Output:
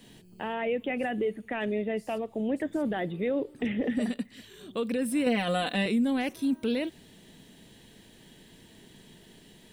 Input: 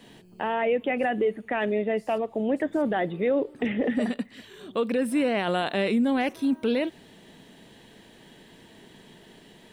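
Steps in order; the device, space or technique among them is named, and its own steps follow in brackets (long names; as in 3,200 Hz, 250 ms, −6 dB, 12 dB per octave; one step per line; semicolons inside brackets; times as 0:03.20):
0:05.26–0:05.86: comb filter 4 ms, depth 93%
smiley-face EQ (low-shelf EQ 120 Hz +6 dB; parametric band 920 Hz −5 dB 2.4 octaves; high-shelf EQ 5,400 Hz +6.5 dB)
level −2.5 dB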